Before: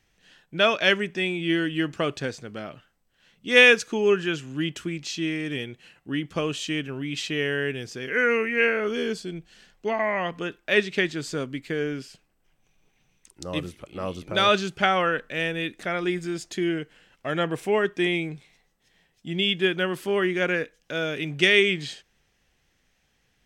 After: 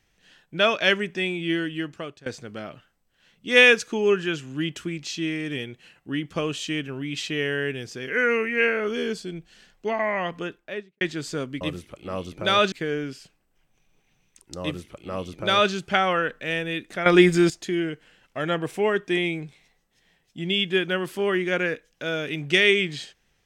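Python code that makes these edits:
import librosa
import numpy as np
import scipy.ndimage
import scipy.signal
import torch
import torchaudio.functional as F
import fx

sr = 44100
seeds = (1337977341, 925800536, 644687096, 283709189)

y = fx.studio_fade_out(x, sr, start_s=10.35, length_s=0.66)
y = fx.edit(y, sr, fx.fade_out_to(start_s=1.12, length_s=1.14, curve='qsin', floor_db=-22.0),
    fx.duplicate(start_s=13.51, length_s=1.11, to_s=11.61),
    fx.clip_gain(start_s=15.95, length_s=0.44, db=11.5), tone=tone)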